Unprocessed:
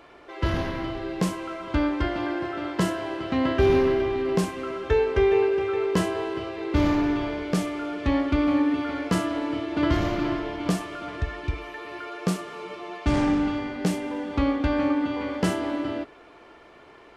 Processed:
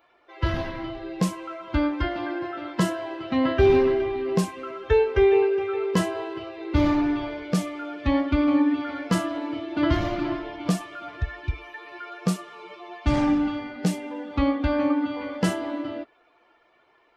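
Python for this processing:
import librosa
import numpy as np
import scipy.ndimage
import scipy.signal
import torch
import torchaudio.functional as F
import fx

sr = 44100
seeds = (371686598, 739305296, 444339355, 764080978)

y = fx.bin_expand(x, sr, power=1.5)
y = y * librosa.db_to_amplitude(3.0)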